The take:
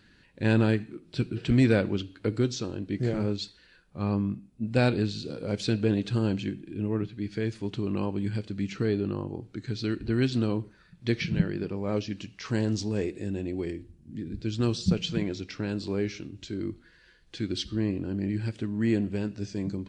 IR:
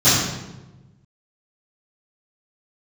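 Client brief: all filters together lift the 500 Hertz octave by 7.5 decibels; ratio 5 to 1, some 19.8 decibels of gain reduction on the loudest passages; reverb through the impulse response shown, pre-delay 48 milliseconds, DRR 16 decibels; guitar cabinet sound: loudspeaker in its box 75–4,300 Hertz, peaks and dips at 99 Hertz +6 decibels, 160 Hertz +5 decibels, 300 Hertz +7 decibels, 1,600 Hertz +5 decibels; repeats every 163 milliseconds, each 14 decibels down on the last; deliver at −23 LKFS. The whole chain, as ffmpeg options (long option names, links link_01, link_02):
-filter_complex "[0:a]equalizer=frequency=500:width_type=o:gain=8,acompressor=threshold=-38dB:ratio=5,aecho=1:1:163|326:0.2|0.0399,asplit=2[link_01][link_02];[1:a]atrim=start_sample=2205,adelay=48[link_03];[link_02][link_03]afir=irnorm=-1:irlink=0,volume=-39dB[link_04];[link_01][link_04]amix=inputs=2:normalize=0,highpass=75,equalizer=frequency=99:width_type=q:width=4:gain=6,equalizer=frequency=160:width_type=q:width=4:gain=5,equalizer=frequency=300:width_type=q:width=4:gain=7,equalizer=frequency=1600:width_type=q:width=4:gain=5,lowpass=frequency=4300:width=0.5412,lowpass=frequency=4300:width=1.3066,volume=15dB"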